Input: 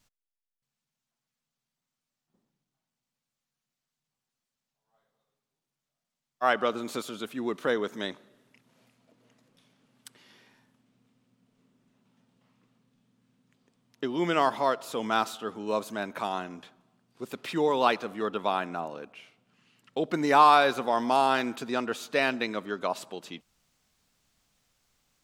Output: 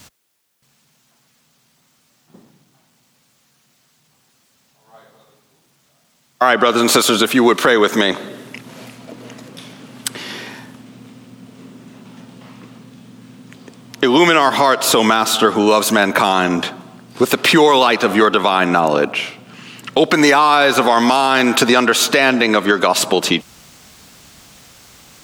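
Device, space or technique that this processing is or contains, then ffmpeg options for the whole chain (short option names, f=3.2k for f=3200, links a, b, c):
mastering chain: -filter_complex "[0:a]highpass=58,equalizer=f=330:t=o:w=0.77:g=2,acrossover=split=500|1200[a][b][c];[a]acompressor=threshold=-42dB:ratio=4[d];[b]acompressor=threshold=-40dB:ratio=4[e];[c]acompressor=threshold=-35dB:ratio=4[f];[d][e][f]amix=inputs=3:normalize=0,acompressor=threshold=-39dB:ratio=1.5,asoftclip=type=hard:threshold=-24.5dB,alimiter=level_in=29.5dB:limit=-1dB:release=50:level=0:latency=1,volume=-1dB"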